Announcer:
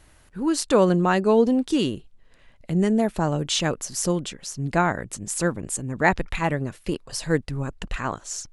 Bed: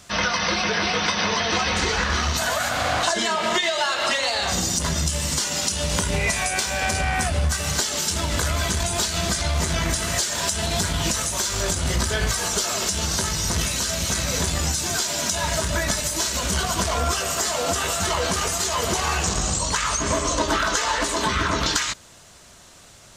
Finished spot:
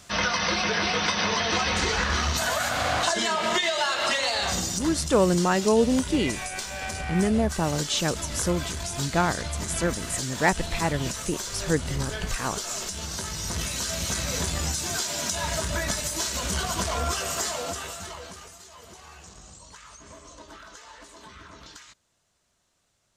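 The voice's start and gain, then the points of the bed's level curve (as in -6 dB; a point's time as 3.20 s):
4.40 s, -2.5 dB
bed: 4.46 s -2.5 dB
4.98 s -9.5 dB
13.11 s -9.5 dB
13.93 s -4.5 dB
17.44 s -4.5 dB
18.63 s -24 dB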